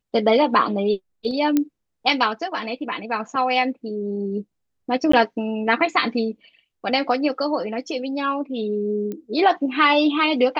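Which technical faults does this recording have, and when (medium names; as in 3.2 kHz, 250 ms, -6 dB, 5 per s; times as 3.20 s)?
1.57 s: pop -7 dBFS
5.12–5.13 s: dropout 14 ms
9.12 s: pop -19 dBFS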